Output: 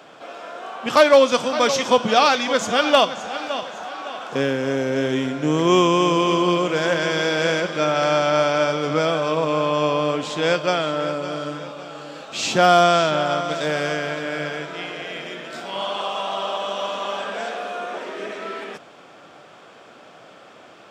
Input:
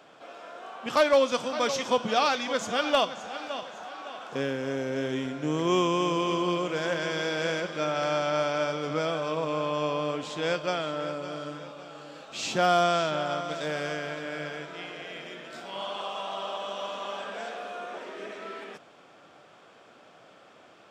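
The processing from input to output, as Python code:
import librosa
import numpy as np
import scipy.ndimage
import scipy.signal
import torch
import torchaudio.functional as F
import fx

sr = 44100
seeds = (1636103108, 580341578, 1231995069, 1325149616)

y = scipy.signal.sosfilt(scipy.signal.butter(2, 67.0, 'highpass', fs=sr, output='sos'), x)
y = y * librosa.db_to_amplitude(8.5)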